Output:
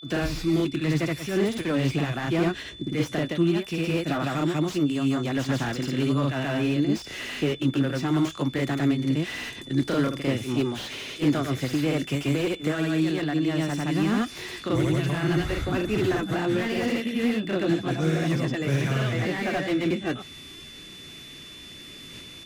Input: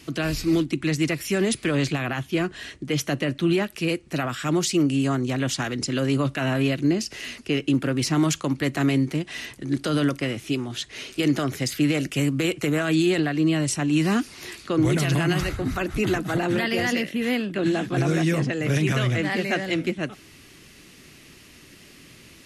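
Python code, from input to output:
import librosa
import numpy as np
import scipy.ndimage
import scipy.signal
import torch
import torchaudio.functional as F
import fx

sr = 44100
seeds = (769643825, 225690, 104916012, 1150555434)

y = fx.granulator(x, sr, seeds[0], grain_ms=251.0, per_s=12.0, spray_ms=100.0, spread_st=0)
y = fx.rider(y, sr, range_db=4, speed_s=0.5)
y = y + 10.0 ** (-45.0 / 20.0) * np.sin(2.0 * np.pi * 3500.0 * np.arange(len(y)) / sr)
y = fx.slew_limit(y, sr, full_power_hz=52.0)
y = F.gain(torch.from_numpy(y), 2.0).numpy()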